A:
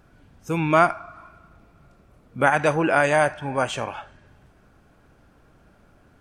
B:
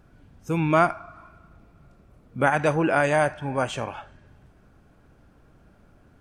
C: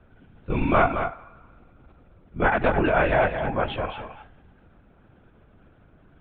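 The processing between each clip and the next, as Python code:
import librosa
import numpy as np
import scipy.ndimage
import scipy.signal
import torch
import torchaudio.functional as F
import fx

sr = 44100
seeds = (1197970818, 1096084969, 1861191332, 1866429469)

y1 = fx.low_shelf(x, sr, hz=420.0, db=5.0)
y1 = y1 * 10.0 ** (-3.5 / 20.0)
y2 = fx.lpc_vocoder(y1, sr, seeds[0], excitation='whisper', order=16)
y2 = y2 + 10.0 ** (-8.0 / 20.0) * np.pad(y2, (int(217 * sr / 1000.0), 0))[:len(y2)]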